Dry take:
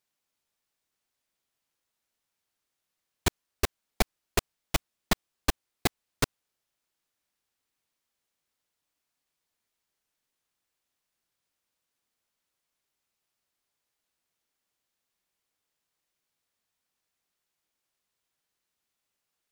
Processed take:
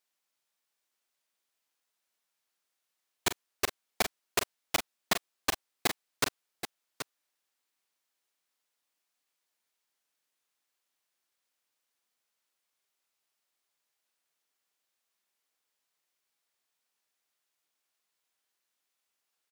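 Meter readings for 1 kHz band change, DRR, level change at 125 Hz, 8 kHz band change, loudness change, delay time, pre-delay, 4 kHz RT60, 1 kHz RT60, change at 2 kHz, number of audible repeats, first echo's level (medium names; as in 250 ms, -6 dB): -0.5 dB, no reverb, -12.5 dB, +0.5 dB, -1.0 dB, 43 ms, no reverb, no reverb, no reverb, +0.5 dB, 2, -11.0 dB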